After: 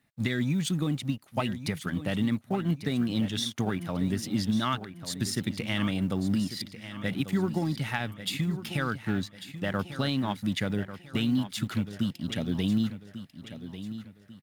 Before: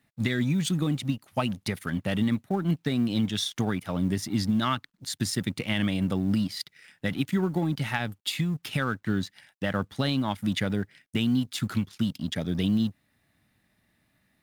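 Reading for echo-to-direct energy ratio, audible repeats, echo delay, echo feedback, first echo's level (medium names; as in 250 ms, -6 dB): -11.5 dB, 3, 1144 ms, 38%, -12.0 dB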